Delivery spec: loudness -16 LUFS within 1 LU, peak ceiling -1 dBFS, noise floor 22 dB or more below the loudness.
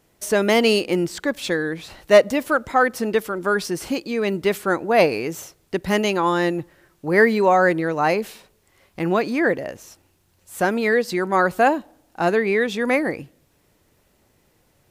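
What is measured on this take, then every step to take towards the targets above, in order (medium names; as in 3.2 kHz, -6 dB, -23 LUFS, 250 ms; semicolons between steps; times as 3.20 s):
loudness -20.5 LUFS; peak level -2.0 dBFS; loudness target -16.0 LUFS
-> trim +4.5 dB; peak limiter -1 dBFS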